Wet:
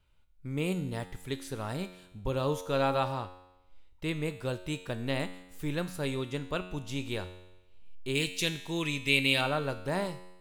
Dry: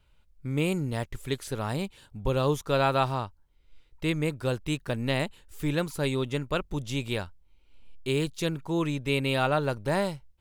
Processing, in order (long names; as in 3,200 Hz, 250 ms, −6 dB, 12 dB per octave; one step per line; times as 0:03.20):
0:08.15–0:09.41: high shelf with overshoot 1,700 Hz +8.5 dB, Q 1.5
tuned comb filter 91 Hz, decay 0.97 s, harmonics all, mix 70%
level +4 dB